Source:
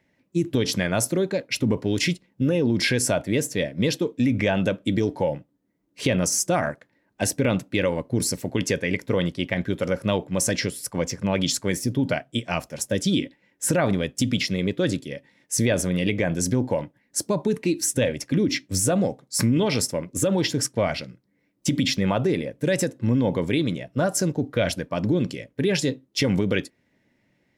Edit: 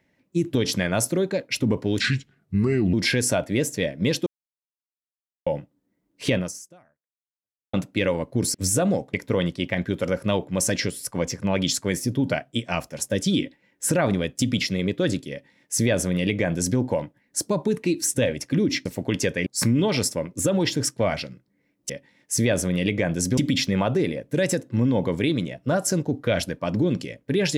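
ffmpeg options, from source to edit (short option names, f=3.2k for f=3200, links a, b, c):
-filter_complex "[0:a]asplit=12[a][b][c][d][e][f][g][h][i][j][k][l];[a]atrim=end=2.004[m];[b]atrim=start=2:end=2.71,asetpts=PTS-STARTPTS,asetrate=33516,aresample=44100[n];[c]atrim=start=2.706:end=4.04,asetpts=PTS-STARTPTS,afade=t=out:st=1.33:d=0.004:c=hsin[o];[d]atrim=start=4.04:end=5.24,asetpts=PTS-STARTPTS,volume=0[p];[e]atrim=start=5.24:end=7.51,asetpts=PTS-STARTPTS,afade=t=in:d=0.004:c=hsin,afade=t=out:st=0.89:d=1.38:c=exp[q];[f]atrim=start=7.51:end=8.322,asetpts=PTS-STARTPTS,afade=t=in:d=0.004:c=hsin[r];[g]atrim=start=18.648:end=19.242[s];[h]atrim=start=8.928:end=18.652[t];[i]atrim=start=8.318:end=8.932[u];[j]atrim=start=19.238:end=21.672[v];[k]atrim=start=15.098:end=16.582[w];[l]atrim=start=21.668[x];[m][n]acrossfade=d=0.004:c1=hsin:c2=hsin[y];[o][p][q][r]concat=n=4:v=0:a=1[z];[y][z]acrossfade=d=0.004:c1=hsin:c2=hsin[aa];[aa][s]acrossfade=d=0.004:c1=hsin:c2=hsin[ab];[ab][t]acrossfade=d=0.004:c1=hsin:c2=hsin[ac];[ac][u]acrossfade=d=0.004:c1=hsin:c2=hsin[ad];[ad][v]acrossfade=d=0.004:c1=hsin:c2=hsin[ae];[ae][w]acrossfade=d=0.004:c1=hsin:c2=hsin[af];[af][x]acrossfade=d=0.004:c1=hsin:c2=hsin"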